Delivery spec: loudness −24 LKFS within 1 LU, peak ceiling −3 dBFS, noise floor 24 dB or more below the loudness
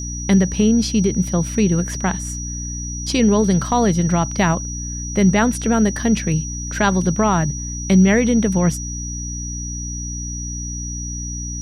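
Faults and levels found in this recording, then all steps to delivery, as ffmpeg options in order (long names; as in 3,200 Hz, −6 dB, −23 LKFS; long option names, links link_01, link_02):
mains hum 60 Hz; hum harmonics up to 300 Hz; level of the hum −27 dBFS; interfering tone 5,800 Hz; level of the tone −29 dBFS; integrated loudness −19.0 LKFS; sample peak −4.5 dBFS; target loudness −24.0 LKFS
→ -af "bandreject=frequency=60:width_type=h:width=4,bandreject=frequency=120:width_type=h:width=4,bandreject=frequency=180:width_type=h:width=4,bandreject=frequency=240:width_type=h:width=4,bandreject=frequency=300:width_type=h:width=4"
-af "bandreject=frequency=5800:width=30"
-af "volume=-5dB"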